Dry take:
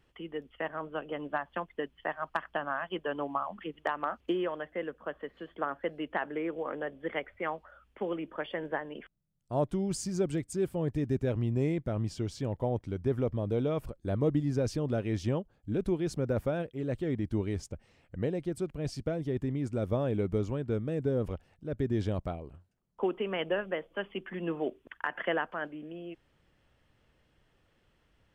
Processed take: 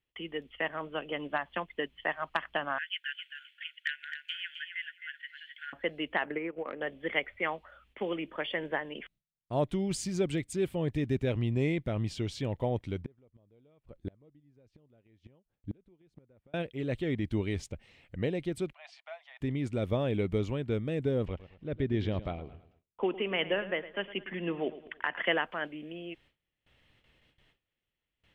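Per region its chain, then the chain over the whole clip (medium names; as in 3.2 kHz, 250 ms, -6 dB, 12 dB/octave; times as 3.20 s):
2.78–5.73 s: brick-wall FIR high-pass 1.4 kHz + feedback delay 262 ms, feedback 15%, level -8 dB
6.25–6.81 s: high-order bell 4.5 kHz -15 dB 1.3 oct + transient shaper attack +9 dB, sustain -11 dB + compression 2:1, threshold -35 dBFS
13.02–16.54 s: treble shelf 2.5 kHz -10.5 dB + inverted gate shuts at -25 dBFS, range -33 dB
18.73–19.41 s: steep high-pass 680 Hz 72 dB/octave + tape spacing loss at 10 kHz 26 dB
21.25–25.25 s: distance through air 150 m + feedback delay 109 ms, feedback 41%, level -15 dB
whole clip: gate with hold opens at -58 dBFS; high-order bell 2.8 kHz +8.5 dB 1.3 oct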